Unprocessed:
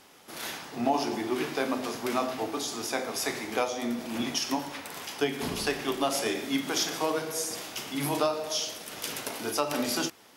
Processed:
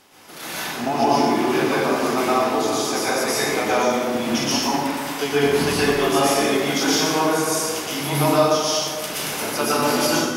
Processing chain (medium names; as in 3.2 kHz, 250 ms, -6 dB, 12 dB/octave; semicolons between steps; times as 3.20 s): plate-style reverb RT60 1.7 s, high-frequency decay 0.5×, pre-delay 105 ms, DRR -9 dB; trim +1.5 dB